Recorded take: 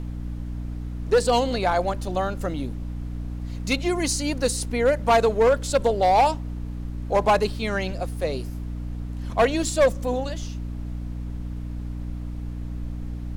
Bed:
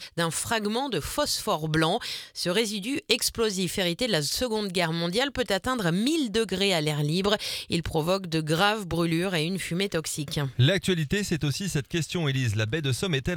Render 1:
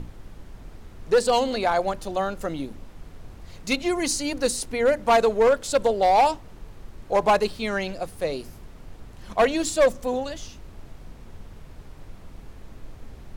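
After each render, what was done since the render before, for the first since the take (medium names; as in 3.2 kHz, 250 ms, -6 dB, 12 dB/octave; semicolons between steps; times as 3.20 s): hum notches 60/120/180/240/300 Hz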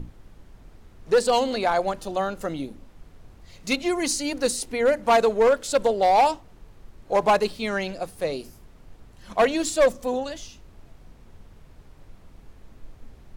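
noise print and reduce 6 dB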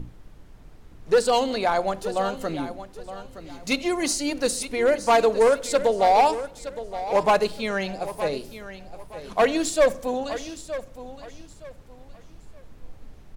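feedback delay 918 ms, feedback 27%, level -13 dB; simulated room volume 2100 m³, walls furnished, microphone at 0.42 m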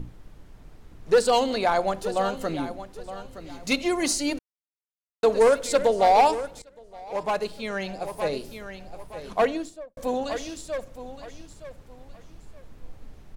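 4.39–5.23 s: mute; 6.62–8.51 s: fade in, from -19.5 dB; 9.20–9.97 s: studio fade out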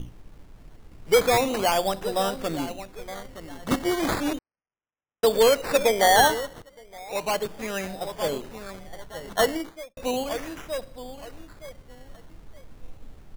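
decimation with a swept rate 14×, swing 60% 0.35 Hz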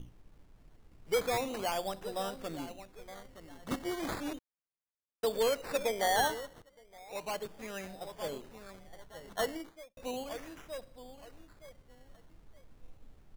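trim -11.5 dB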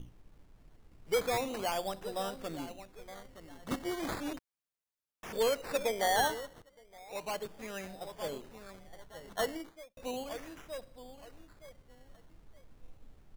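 4.37–5.33 s: integer overflow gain 39 dB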